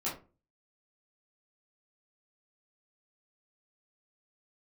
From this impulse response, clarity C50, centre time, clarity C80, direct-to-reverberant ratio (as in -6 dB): 7.5 dB, 29 ms, 14.0 dB, -9.0 dB